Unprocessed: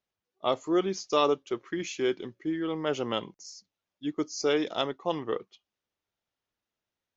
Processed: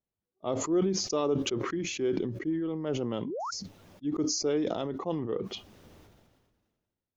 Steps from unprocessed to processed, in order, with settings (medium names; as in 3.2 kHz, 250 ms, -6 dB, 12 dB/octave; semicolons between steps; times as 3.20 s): tilt shelf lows +8.5 dB, about 630 Hz; painted sound rise, 3.25–3.51 s, 220–1500 Hz -29 dBFS; decay stretcher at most 36 dB/s; trim -5.5 dB